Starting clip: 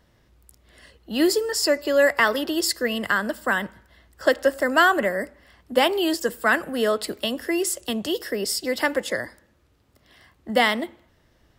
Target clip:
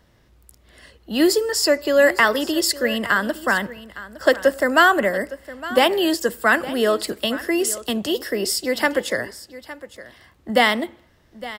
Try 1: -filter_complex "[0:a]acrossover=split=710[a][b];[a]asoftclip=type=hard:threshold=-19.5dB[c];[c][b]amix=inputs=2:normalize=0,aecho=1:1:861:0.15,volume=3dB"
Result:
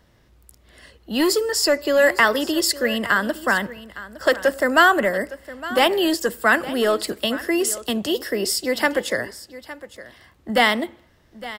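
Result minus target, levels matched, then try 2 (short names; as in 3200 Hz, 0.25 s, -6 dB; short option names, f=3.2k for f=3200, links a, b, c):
hard clip: distortion +22 dB
-filter_complex "[0:a]acrossover=split=710[a][b];[a]asoftclip=type=hard:threshold=-11.5dB[c];[c][b]amix=inputs=2:normalize=0,aecho=1:1:861:0.15,volume=3dB"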